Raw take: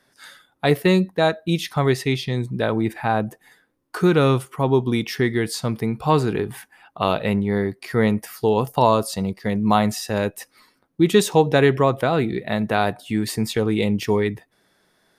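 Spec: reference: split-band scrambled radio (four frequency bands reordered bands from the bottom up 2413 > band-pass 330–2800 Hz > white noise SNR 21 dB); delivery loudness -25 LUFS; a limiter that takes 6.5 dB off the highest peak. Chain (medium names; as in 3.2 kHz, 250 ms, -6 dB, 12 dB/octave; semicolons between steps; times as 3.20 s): peak limiter -9.5 dBFS; four frequency bands reordered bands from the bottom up 2413; band-pass 330–2800 Hz; white noise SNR 21 dB; trim -1.5 dB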